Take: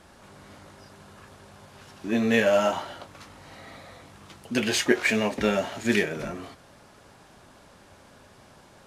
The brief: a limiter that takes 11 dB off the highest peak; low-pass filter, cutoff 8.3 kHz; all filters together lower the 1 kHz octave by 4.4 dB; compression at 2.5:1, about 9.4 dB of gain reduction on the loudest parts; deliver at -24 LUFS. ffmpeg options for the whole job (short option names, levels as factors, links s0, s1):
-af "lowpass=8300,equalizer=f=1000:t=o:g=-6.5,acompressor=threshold=0.0282:ratio=2.5,volume=5.96,alimiter=limit=0.251:level=0:latency=1"